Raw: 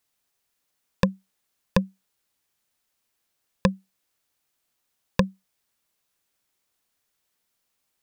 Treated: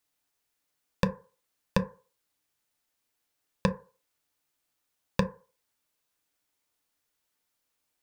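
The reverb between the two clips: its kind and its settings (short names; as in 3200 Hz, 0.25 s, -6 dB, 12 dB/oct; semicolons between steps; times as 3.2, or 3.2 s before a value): FDN reverb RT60 0.38 s, low-frequency decay 0.75×, high-frequency decay 0.35×, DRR 6 dB; gain -4 dB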